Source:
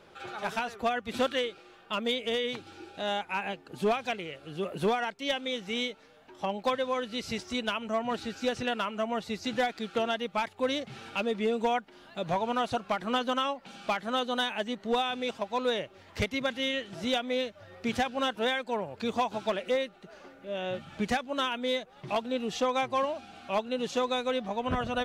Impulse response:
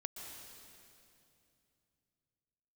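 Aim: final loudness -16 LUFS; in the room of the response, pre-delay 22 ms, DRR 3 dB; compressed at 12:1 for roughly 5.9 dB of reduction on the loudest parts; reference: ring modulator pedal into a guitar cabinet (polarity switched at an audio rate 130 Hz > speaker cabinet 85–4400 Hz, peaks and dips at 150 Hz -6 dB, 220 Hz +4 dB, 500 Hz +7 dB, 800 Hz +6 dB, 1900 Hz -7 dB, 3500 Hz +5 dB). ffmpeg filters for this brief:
-filter_complex "[0:a]acompressor=threshold=-29dB:ratio=12,asplit=2[a][b];[1:a]atrim=start_sample=2205,adelay=22[c];[b][c]afir=irnorm=-1:irlink=0,volume=-1dB[d];[a][d]amix=inputs=2:normalize=0,aeval=exprs='val(0)*sgn(sin(2*PI*130*n/s))':c=same,highpass=85,equalizer=f=150:t=q:w=4:g=-6,equalizer=f=220:t=q:w=4:g=4,equalizer=f=500:t=q:w=4:g=7,equalizer=f=800:t=q:w=4:g=6,equalizer=f=1.9k:t=q:w=4:g=-7,equalizer=f=3.5k:t=q:w=4:g=5,lowpass=f=4.4k:w=0.5412,lowpass=f=4.4k:w=1.3066,volume=15dB"

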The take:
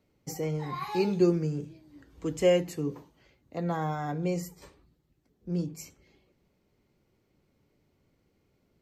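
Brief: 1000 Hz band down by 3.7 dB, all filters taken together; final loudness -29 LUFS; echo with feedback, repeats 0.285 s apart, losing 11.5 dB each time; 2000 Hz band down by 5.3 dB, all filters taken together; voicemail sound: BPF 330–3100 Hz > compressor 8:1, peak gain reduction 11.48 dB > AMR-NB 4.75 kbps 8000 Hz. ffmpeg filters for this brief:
-af "highpass=330,lowpass=3.1k,equalizer=f=1k:t=o:g=-4,equalizer=f=2k:t=o:g=-4.5,aecho=1:1:285|570|855:0.266|0.0718|0.0194,acompressor=threshold=-31dB:ratio=8,volume=11dB" -ar 8000 -c:a libopencore_amrnb -b:a 4750

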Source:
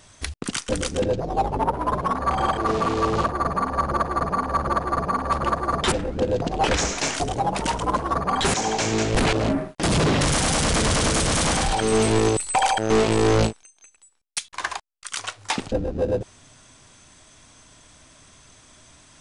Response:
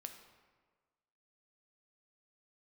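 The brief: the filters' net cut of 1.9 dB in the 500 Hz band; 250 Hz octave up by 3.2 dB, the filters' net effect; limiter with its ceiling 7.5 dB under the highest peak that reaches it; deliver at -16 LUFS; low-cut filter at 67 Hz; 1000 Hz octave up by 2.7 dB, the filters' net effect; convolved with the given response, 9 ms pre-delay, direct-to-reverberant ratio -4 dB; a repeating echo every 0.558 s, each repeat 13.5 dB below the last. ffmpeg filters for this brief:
-filter_complex "[0:a]highpass=67,equalizer=f=250:t=o:g=5.5,equalizer=f=500:t=o:g=-5,equalizer=f=1k:t=o:g=4.5,alimiter=limit=-15dB:level=0:latency=1,aecho=1:1:558|1116:0.211|0.0444,asplit=2[a][b];[1:a]atrim=start_sample=2205,adelay=9[c];[b][c]afir=irnorm=-1:irlink=0,volume=8.5dB[d];[a][d]amix=inputs=2:normalize=0,volume=3dB"

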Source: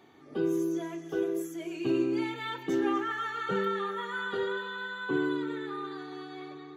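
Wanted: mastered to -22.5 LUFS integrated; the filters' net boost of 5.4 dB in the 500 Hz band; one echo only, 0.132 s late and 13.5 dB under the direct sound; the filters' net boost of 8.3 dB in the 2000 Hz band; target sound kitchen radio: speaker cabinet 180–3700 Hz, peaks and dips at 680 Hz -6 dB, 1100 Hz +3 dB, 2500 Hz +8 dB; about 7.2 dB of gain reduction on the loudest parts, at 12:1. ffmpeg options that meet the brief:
-af "equalizer=f=500:t=o:g=8.5,equalizer=f=2k:t=o:g=9,acompressor=threshold=-26dB:ratio=12,highpass=180,equalizer=f=680:t=q:w=4:g=-6,equalizer=f=1.1k:t=q:w=4:g=3,equalizer=f=2.5k:t=q:w=4:g=8,lowpass=f=3.7k:w=0.5412,lowpass=f=3.7k:w=1.3066,aecho=1:1:132:0.211,volume=8dB"

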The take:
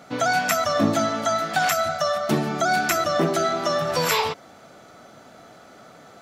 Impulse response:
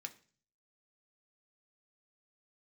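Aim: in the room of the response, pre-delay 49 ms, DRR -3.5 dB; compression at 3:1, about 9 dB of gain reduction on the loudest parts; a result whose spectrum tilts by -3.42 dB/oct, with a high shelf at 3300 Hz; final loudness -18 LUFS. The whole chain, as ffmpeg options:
-filter_complex "[0:a]highshelf=f=3.3k:g=4,acompressor=threshold=-27dB:ratio=3,asplit=2[a][b];[1:a]atrim=start_sample=2205,adelay=49[c];[b][c]afir=irnorm=-1:irlink=0,volume=7dB[d];[a][d]amix=inputs=2:normalize=0,volume=6dB"

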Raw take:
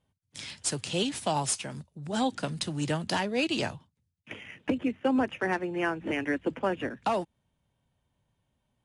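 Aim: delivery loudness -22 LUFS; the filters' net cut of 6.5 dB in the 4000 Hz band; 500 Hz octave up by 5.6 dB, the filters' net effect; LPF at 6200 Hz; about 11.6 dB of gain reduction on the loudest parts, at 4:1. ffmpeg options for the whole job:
-af "lowpass=6.2k,equalizer=f=500:t=o:g=7,equalizer=f=4k:t=o:g=-9,acompressor=threshold=-32dB:ratio=4,volume=14.5dB"

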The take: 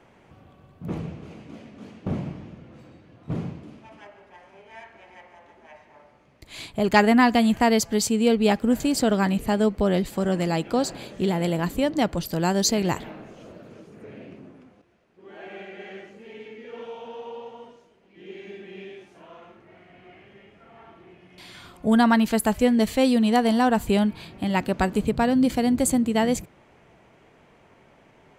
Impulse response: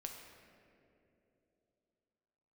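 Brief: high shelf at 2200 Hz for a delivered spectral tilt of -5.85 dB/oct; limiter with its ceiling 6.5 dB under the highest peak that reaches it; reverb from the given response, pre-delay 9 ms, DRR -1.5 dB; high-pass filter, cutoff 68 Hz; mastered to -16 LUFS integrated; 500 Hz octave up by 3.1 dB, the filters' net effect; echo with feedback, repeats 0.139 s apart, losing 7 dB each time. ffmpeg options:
-filter_complex "[0:a]highpass=68,equalizer=f=500:t=o:g=4,highshelf=f=2.2k:g=-4.5,alimiter=limit=-11.5dB:level=0:latency=1,aecho=1:1:139|278|417|556|695:0.447|0.201|0.0905|0.0407|0.0183,asplit=2[a][b];[1:a]atrim=start_sample=2205,adelay=9[c];[b][c]afir=irnorm=-1:irlink=0,volume=4.5dB[d];[a][d]amix=inputs=2:normalize=0,volume=2dB"

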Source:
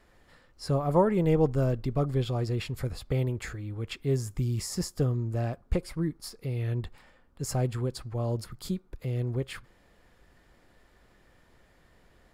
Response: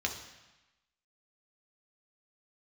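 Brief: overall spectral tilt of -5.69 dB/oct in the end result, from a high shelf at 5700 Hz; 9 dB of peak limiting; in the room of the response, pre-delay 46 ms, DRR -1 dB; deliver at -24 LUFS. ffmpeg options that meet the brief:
-filter_complex "[0:a]highshelf=f=5.7k:g=8.5,alimiter=limit=-20dB:level=0:latency=1,asplit=2[a][b];[1:a]atrim=start_sample=2205,adelay=46[c];[b][c]afir=irnorm=-1:irlink=0,volume=-4dB[d];[a][d]amix=inputs=2:normalize=0,volume=5dB"

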